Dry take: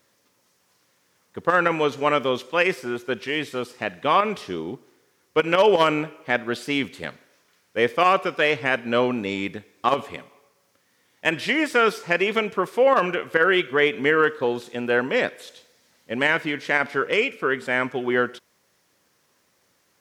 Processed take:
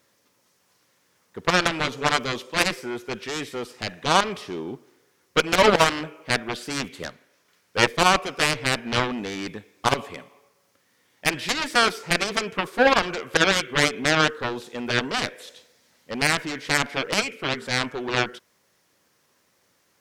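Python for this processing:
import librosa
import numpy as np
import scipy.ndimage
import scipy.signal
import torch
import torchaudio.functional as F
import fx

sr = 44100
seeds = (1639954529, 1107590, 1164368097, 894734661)

y = fx.cheby_harmonics(x, sr, harmonics=(7,), levels_db=(-11,), full_scale_db=-5.0)
y = fx.transient(y, sr, attack_db=4, sustain_db=-3, at=(6.94, 7.87))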